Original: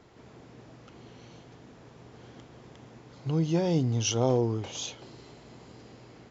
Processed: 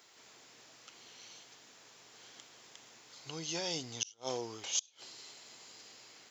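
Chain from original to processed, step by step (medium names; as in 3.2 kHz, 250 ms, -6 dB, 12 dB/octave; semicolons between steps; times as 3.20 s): differentiator; inverted gate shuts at -29 dBFS, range -32 dB; trim +11 dB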